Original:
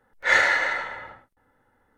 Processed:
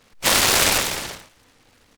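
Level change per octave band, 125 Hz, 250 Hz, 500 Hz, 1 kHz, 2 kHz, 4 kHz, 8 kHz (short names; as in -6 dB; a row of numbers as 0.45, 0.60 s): +17.5, +15.0, +5.0, +3.0, -3.0, +14.0, +22.0 dB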